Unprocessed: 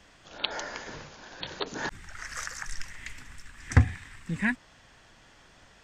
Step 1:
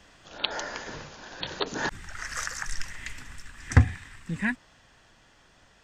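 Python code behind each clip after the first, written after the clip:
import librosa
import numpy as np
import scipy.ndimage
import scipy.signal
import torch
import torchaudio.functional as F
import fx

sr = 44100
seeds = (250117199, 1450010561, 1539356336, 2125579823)

y = fx.notch(x, sr, hz=2200.0, q=22.0)
y = fx.rider(y, sr, range_db=4, speed_s=2.0)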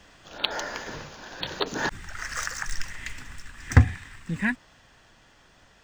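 y = scipy.signal.medfilt(x, 3)
y = F.gain(torch.from_numpy(y), 2.0).numpy()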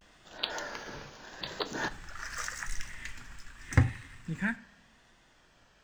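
y = fx.rev_double_slope(x, sr, seeds[0], early_s=0.32, late_s=1.5, knee_db=-18, drr_db=9.5)
y = fx.vibrato(y, sr, rate_hz=0.83, depth_cents=94.0)
y = F.gain(torch.from_numpy(y), -6.5).numpy()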